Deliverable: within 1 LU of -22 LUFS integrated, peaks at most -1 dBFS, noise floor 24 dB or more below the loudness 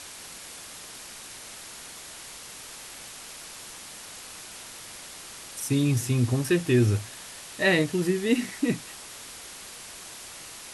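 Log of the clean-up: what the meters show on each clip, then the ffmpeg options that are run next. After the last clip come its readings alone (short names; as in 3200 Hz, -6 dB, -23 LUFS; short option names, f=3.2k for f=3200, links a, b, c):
noise floor -43 dBFS; noise floor target -52 dBFS; loudness -27.5 LUFS; peak -10.0 dBFS; loudness target -22.0 LUFS
-> -af "afftdn=nr=9:nf=-43"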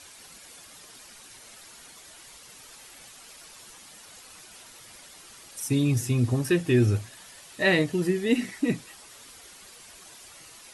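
noise floor -49 dBFS; loudness -25.0 LUFS; peak -10.0 dBFS; loudness target -22.0 LUFS
-> -af "volume=3dB"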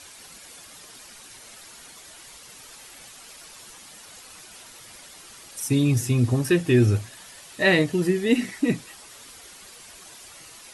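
loudness -22.0 LUFS; peak -7.0 dBFS; noise floor -46 dBFS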